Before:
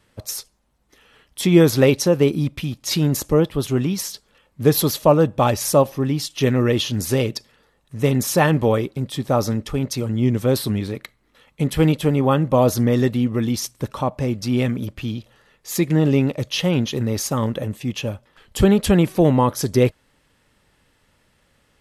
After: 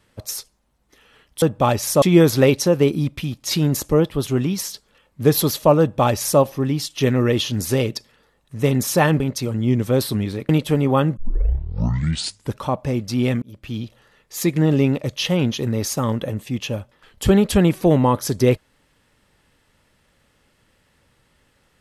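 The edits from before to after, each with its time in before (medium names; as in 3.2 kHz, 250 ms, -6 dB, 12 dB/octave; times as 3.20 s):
5.20–5.80 s: copy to 1.42 s
8.60–9.75 s: delete
11.04–11.83 s: delete
12.51 s: tape start 1.41 s
14.76–15.15 s: fade in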